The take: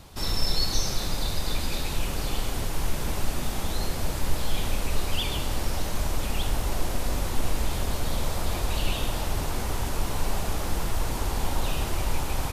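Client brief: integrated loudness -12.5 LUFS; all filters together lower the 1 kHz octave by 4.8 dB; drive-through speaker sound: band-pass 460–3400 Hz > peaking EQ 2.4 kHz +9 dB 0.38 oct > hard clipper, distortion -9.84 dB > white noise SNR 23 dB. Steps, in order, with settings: band-pass 460–3400 Hz; peaking EQ 1 kHz -6 dB; peaking EQ 2.4 kHz +9 dB 0.38 oct; hard clipper -36 dBFS; white noise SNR 23 dB; trim +25 dB

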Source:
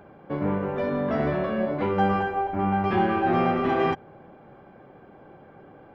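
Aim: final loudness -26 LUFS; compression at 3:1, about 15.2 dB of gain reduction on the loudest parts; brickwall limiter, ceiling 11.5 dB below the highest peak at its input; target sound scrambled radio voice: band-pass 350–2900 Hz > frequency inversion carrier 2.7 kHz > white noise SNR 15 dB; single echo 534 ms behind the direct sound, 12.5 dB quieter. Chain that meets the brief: compression 3:1, threshold -40 dBFS; peak limiter -36.5 dBFS; band-pass 350–2900 Hz; delay 534 ms -12.5 dB; frequency inversion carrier 2.7 kHz; white noise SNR 15 dB; trim +18.5 dB

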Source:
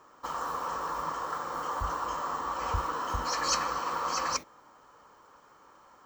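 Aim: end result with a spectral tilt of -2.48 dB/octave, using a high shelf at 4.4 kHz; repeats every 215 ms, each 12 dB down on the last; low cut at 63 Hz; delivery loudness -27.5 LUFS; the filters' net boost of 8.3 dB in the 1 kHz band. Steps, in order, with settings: high-pass 63 Hz; peaking EQ 1 kHz +9 dB; treble shelf 4.4 kHz +8.5 dB; feedback delay 215 ms, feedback 25%, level -12 dB; trim -3 dB

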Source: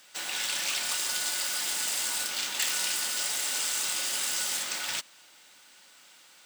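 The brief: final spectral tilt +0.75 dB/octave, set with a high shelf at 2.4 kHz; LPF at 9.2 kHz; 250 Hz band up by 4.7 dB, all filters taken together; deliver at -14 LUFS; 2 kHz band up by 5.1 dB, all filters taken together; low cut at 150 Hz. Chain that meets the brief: high-pass 150 Hz; low-pass 9.2 kHz; peaking EQ 250 Hz +6.5 dB; peaking EQ 2 kHz +4 dB; treble shelf 2.4 kHz +5 dB; trim +10.5 dB

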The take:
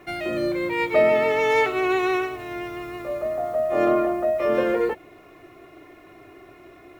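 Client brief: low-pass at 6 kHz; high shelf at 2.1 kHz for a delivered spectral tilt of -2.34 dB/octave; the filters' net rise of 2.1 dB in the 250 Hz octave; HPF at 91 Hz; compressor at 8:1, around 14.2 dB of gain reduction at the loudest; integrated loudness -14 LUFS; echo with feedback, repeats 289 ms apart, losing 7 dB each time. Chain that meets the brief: high-pass 91 Hz; low-pass 6 kHz; peaking EQ 250 Hz +3.5 dB; treble shelf 2.1 kHz +9 dB; compression 8:1, threshold -27 dBFS; feedback delay 289 ms, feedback 45%, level -7 dB; trim +15.5 dB

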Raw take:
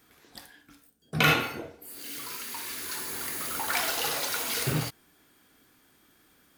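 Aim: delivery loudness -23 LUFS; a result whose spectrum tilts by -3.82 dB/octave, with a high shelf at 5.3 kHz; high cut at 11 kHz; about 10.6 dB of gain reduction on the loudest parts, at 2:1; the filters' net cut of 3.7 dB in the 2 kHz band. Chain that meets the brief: low-pass 11 kHz; peaking EQ 2 kHz -4 dB; treble shelf 5.3 kHz -7 dB; compression 2:1, threshold -39 dBFS; trim +16 dB

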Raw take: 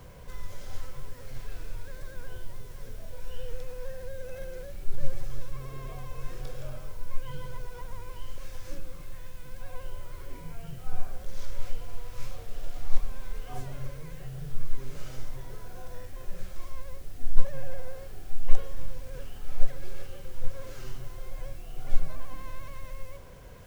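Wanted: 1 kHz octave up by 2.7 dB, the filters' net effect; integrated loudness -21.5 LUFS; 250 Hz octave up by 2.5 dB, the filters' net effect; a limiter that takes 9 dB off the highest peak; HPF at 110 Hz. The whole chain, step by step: high-pass 110 Hz; peaking EQ 250 Hz +5 dB; peaking EQ 1 kHz +3 dB; trim +25 dB; peak limiter -11 dBFS

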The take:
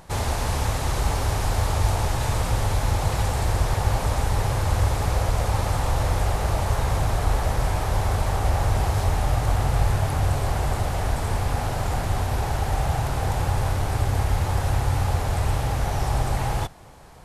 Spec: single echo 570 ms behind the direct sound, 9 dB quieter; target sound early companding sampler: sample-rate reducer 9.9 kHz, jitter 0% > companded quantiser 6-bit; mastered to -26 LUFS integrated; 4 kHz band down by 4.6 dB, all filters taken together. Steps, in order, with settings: peaking EQ 4 kHz -6 dB; delay 570 ms -9 dB; sample-rate reducer 9.9 kHz, jitter 0%; companded quantiser 6-bit; trim -2 dB

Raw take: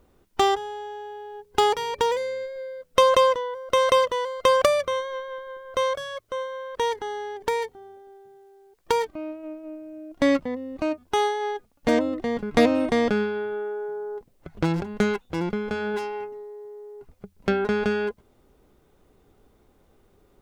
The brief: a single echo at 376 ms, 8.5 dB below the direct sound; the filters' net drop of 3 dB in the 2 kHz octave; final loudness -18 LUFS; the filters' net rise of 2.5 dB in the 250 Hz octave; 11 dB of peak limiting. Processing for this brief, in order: peaking EQ 250 Hz +3 dB; peaking EQ 2 kHz -4 dB; peak limiter -14 dBFS; delay 376 ms -8.5 dB; trim +8.5 dB

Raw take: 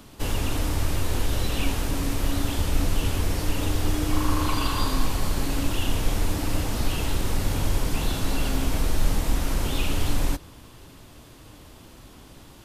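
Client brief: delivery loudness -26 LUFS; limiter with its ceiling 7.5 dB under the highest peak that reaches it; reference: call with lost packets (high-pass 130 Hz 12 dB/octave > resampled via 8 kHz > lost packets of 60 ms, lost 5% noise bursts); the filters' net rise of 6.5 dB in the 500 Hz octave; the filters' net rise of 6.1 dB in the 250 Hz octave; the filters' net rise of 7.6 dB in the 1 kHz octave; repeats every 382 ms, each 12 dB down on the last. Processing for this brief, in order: peaking EQ 250 Hz +6 dB; peaking EQ 500 Hz +4.5 dB; peaking EQ 1 kHz +7.5 dB; peak limiter -14 dBFS; high-pass 130 Hz 12 dB/octave; feedback delay 382 ms, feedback 25%, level -12 dB; resampled via 8 kHz; lost packets of 60 ms, lost 5% noise bursts; trim +1 dB

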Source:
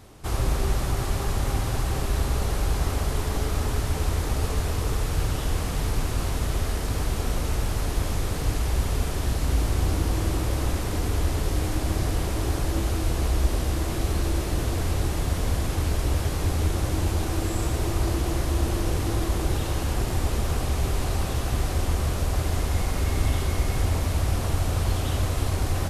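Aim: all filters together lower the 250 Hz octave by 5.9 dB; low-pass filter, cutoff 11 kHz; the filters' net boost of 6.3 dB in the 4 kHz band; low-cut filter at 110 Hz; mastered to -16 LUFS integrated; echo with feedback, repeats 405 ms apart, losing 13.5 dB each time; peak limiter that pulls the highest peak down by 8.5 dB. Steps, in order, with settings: high-pass 110 Hz; low-pass 11 kHz; peaking EQ 250 Hz -8.5 dB; peaking EQ 4 kHz +8 dB; peak limiter -25 dBFS; feedback delay 405 ms, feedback 21%, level -13.5 dB; trim +17.5 dB

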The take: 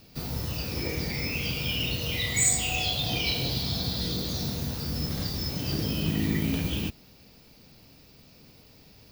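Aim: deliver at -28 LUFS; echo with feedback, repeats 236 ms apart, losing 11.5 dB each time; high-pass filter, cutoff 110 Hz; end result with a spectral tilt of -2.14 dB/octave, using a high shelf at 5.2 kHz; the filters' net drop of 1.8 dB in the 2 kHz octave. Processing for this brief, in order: high-pass 110 Hz; peaking EQ 2 kHz -4 dB; treble shelf 5.2 kHz +7.5 dB; feedback delay 236 ms, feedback 27%, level -11.5 dB; trim -3 dB

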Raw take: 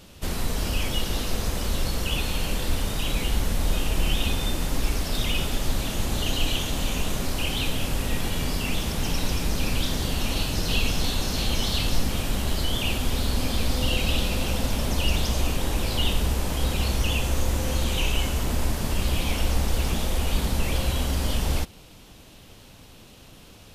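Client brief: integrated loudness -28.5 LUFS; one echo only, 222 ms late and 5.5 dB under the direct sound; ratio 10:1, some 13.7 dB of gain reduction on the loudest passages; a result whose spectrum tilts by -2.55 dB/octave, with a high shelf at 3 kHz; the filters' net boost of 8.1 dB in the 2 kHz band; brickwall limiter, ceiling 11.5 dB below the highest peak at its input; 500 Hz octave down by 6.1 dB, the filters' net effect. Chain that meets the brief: peaking EQ 500 Hz -8.5 dB; peaking EQ 2 kHz +8 dB; treble shelf 3 kHz +7 dB; compression 10:1, threshold -30 dBFS; peak limiter -30 dBFS; delay 222 ms -5.5 dB; trim +9.5 dB

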